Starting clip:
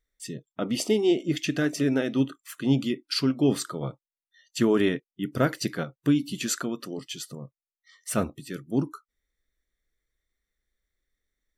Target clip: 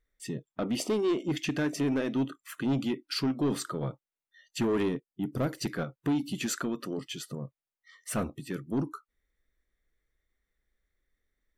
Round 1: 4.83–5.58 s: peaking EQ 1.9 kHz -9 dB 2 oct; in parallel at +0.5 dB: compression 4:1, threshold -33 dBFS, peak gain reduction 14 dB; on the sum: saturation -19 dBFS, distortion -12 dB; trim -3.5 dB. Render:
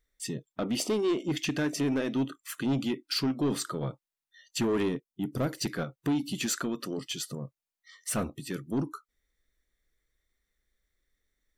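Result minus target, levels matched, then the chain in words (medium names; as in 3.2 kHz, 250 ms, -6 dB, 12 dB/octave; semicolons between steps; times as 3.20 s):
4 kHz band +3.0 dB
4.83–5.58 s: peaking EQ 1.9 kHz -9 dB 2 oct; in parallel at +0.5 dB: compression 4:1, threshold -33 dBFS, peak gain reduction 14 dB + low-pass 3.2 kHz 12 dB/octave; on the sum: saturation -19 dBFS, distortion -12 dB; trim -3.5 dB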